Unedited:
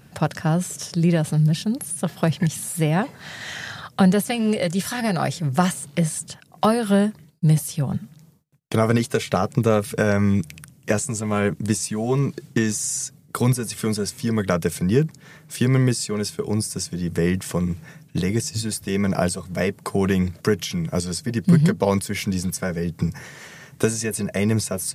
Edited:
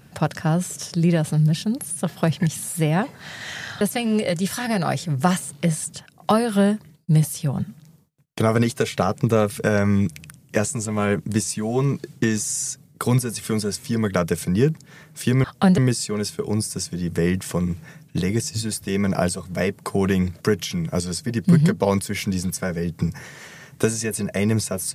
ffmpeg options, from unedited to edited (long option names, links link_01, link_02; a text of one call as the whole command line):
ffmpeg -i in.wav -filter_complex "[0:a]asplit=4[link_01][link_02][link_03][link_04];[link_01]atrim=end=3.812[link_05];[link_02]atrim=start=4.148:end=15.782[link_06];[link_03]atrim=start=3.808:end=4.152[link_07];[link_04]atrim=start=15.778[link_08];[link_05][link_06]acrossfade=duration=0.004:curve1=hsin:curve2=hsin[link_09];[link_09][link_07]acrossfade=duration=0.004:curve1=hsin:curve2=hsin[link_10];[link_10][link_08]acrossfade=duration=0.004:curve1=hsin:curve2=hsin" out.wav